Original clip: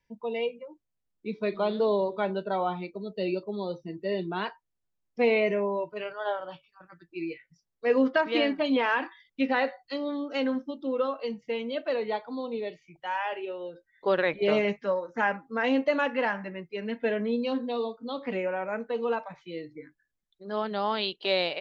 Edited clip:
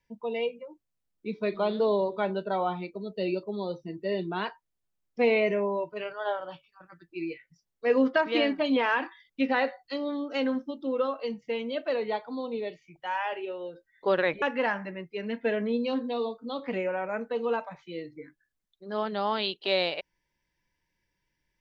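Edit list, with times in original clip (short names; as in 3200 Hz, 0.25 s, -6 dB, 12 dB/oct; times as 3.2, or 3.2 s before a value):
14.42–16.01 cut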